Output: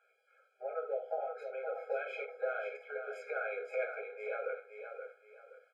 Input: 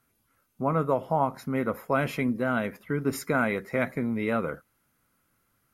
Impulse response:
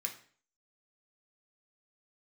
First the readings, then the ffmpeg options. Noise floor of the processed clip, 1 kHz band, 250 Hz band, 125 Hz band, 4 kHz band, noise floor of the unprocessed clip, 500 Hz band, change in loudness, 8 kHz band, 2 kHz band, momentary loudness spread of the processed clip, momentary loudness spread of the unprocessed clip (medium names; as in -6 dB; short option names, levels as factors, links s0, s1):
-74 dBFS, -13.5 dB, under -35 dB, under -40 dB, under -15 dB, -72 dBFS, -7.5 dB, -11.5 dB, under -25 dB, -9.5 dB, 10 LU, 4 LU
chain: -filter_complex "[0:a]lowpass=2600,lowshelf=f=490:g=8.5,acompressor=threshold=0.0251:ratio=16,aecho=1:1:523|1046|1569|2092:0.422|0.127|0.038|0.0114[s0];[1:a]atrim=start_sample=2205,atrim=end_sample=4410[s1];[s0][s1]afir=irnorm=-1:irlink=0,afftfilt=real='re*eq(mod(floor(b*sr/1024/430),2),1)':imag='im*eq(mod(floor(b*sr/1024/430),2),1)':win_size=1024:overlap=0.75,volume=2.24"